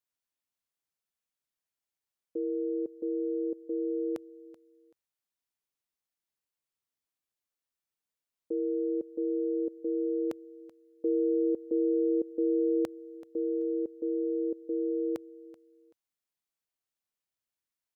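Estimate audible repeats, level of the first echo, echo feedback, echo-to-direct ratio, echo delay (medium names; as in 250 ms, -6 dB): 2, -18.5 dB, 24%, -18.0 dB, 382 ms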